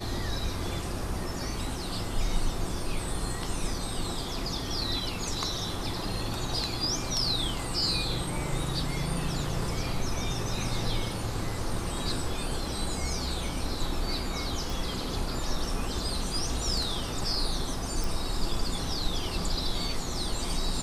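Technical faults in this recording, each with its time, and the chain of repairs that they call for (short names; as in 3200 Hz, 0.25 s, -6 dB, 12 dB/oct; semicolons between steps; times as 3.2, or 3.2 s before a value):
14.7 pop
18.04 pop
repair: de-click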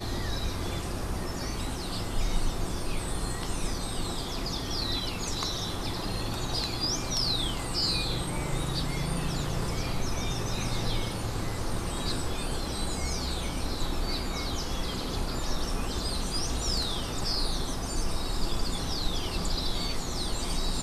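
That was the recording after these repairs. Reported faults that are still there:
18.04 pop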